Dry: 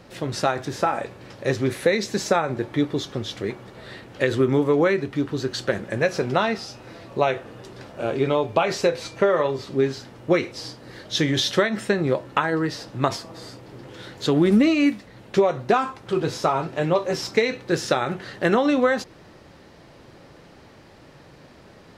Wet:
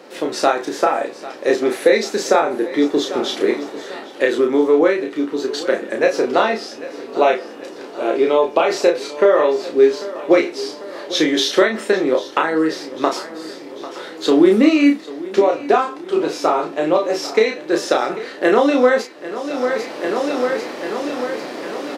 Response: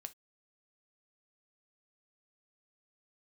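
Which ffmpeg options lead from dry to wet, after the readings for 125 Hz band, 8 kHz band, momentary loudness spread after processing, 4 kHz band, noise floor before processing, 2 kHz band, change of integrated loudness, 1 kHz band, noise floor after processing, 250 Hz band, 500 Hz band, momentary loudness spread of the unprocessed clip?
-12.0 dB, +4.5 dB, 13 LU, +4.5 dB, -49 dBFS, +4.5 dB, +5.0 dB, +5.5 dB, -35 dBFS, +5.0 dB, +7.0 dB, 18 LU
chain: -filter_complex "[0:a]highpass=f=300:w=0.5412,highpass=f=300:w=1.3066,lowshelf=f=410:g=10,asplit=2[a][b];[b]adelay=32,volume=-4dB[c];[a][c]amix=inputs=2:normalize=0,aecho=1:1:795|1590|2385|3180|3975:0.15|0.0838|0.0469|0.0263|0.0147,asplit=2[d][e];[1:a]atrim=start_sample=2205,asetrate=48510,aresample=44100,lowshelf=f=180:g=-7.5[f];[e][f]afir=irnorm=-1:irlink=0,volume=8dB[g];[d][g]amix=inputs=2:normalize=0,dynaudnorm=f=110:g=11:m=11.5dB,volume=-1.5dB"

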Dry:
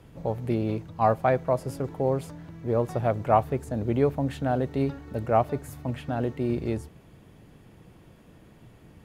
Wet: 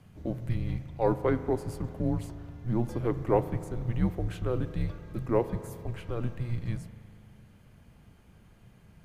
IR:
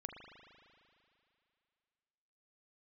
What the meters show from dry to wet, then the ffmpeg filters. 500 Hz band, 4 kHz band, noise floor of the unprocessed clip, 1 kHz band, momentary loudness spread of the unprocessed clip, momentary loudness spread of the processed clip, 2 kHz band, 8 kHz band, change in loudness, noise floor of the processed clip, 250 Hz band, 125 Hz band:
-5.5 dB, -4.5 dB, -54 dBFS, -10.5 dB, 10 LU, 11 LU, -6.0 dB, n/a, -4.5 dB, -57 dBFS, -3.0 dB, -1.5 dB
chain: -filter_complex "[0:a]afreqshift=-240,asplit=2[a][b];[1:a]atrim=start_sample=2205[c];[b][c]afir=irnorm=-1:irlink=0,volume=-2dB[d];[a][d]amix=inputs=2:normalize=0,volume=-7dB"

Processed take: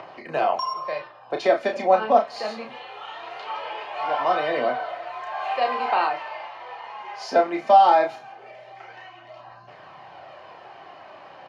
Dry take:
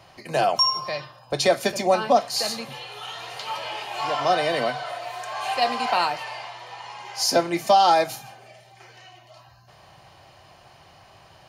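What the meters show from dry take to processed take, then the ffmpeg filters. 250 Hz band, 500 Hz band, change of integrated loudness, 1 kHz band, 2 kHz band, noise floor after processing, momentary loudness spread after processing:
-2.0 dB, +1.0 dB, +0.5 dB, +2.0 dB, -1.0 dB, -46 dBFS, 19 LU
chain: -filter_complex "[0:a]acompressor=mode=upward:threshold=-34dB:ratio=2.5,aphaser=in_gain=1:out_gain=1:delay=4.9:decay=0.31:speed=0.21:type=triangular,highpass=290,lowpass=2.1k,asplit=2[a][b];[b]adelay=32,volume=-6dB[c];[a][c]amix=inputs=2:normalize=0,asplit=2[d][e];[e]adelay=190,highpass=300,lowpass=3.4k,asoftclip=type=hard:threshold=-12dB,volume=-29dB[f];[d][f]amix=inputs=2:normalize=0"

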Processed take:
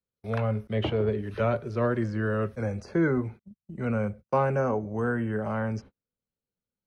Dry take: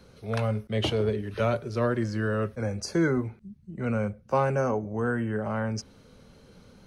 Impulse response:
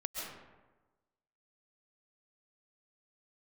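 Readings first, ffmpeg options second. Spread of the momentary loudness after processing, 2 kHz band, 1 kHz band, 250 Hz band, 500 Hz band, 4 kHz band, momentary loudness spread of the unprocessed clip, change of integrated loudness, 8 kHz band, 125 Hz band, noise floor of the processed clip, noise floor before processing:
7 LU, -0.5 dB, 0.0 dB, 0.0 dB, 0.0 dB, n/a, 7 LU, 0.0 dB, under -10 dB, 0.0 dB, under -85 dBFS, -56 dBFS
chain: -filter_complex "[0:a]agate=range=-41dB:threshold=-41dB:ratio=16:detection=peak,acrossover=split=620|2800[a][b][c];[c]acompressor=threshold=-59dB:ratio=6[d];[a][b][d]amix=inputs=3:normalize=0"

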